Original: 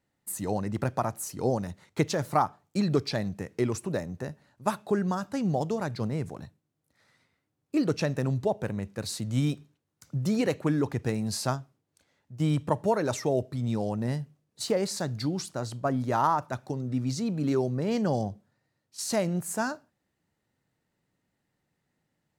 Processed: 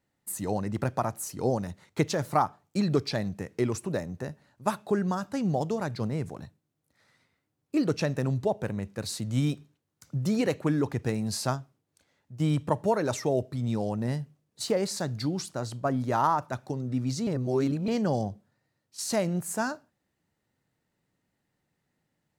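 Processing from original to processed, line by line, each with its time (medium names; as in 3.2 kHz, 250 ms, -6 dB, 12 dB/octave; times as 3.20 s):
17.27–17.88 s: reverse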